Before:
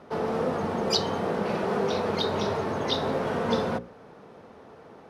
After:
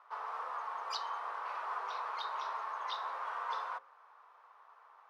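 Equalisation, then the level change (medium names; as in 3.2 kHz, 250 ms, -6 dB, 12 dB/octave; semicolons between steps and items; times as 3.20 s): ladder high-pass 970 Hz, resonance 65%; treble shelf 3.6 kHz -8 dB; 0.0 dB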